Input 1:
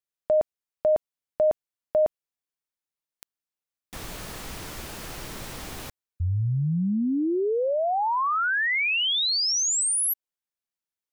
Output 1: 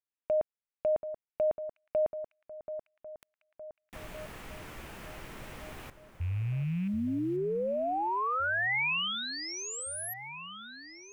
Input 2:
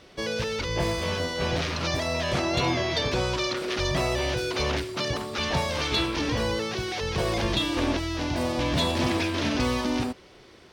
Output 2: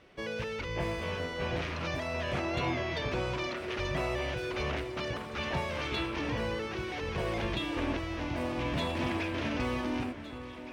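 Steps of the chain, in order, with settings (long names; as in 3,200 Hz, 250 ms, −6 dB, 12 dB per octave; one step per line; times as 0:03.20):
loose part that buzzes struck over −32 dBFS, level −35 dBFS
high shelf with overshoot 3,300 Hz −6.5 dB, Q 1.5
delay that swaps between a low-pass and a high-pass 732 ms, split 1,800 Hz, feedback 68%, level −11 dB
level −7 dB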